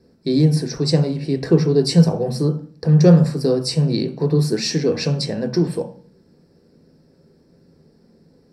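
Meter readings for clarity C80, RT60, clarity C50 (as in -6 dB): 15.5 dB, 0.45 s, 11.0 dB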